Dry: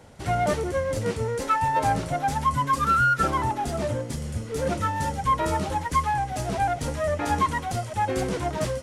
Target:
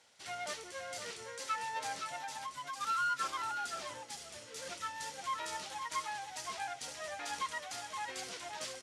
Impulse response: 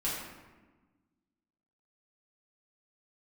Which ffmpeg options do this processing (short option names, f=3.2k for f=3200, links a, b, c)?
-filter_complex "[0:a]bandpass=f=4.7k:t=q:w=0.85:csg=0,aecho=1:1:520:0.473,asettb=1/sr,asplit=3[a][b][c];[a]atrim=end=2.214[d];[b]atrim=start=2.21:end=2.81,asetpts=PTS-STARTPTS,afade=t=in:d=0.004:c=qsin,afade=t=out:st=0.596:d=0.004:c=qsin,acompressor=threshold=-36dB:ratio=6[e];[c]atrim=start=2.806[f];[d][e]acrossfade=d=0.004:c1=hsin:c2=qsin[g];[g][f]acrossfade=d=0.004:c1=qsin:c2=hsin,volume=-3.5dB"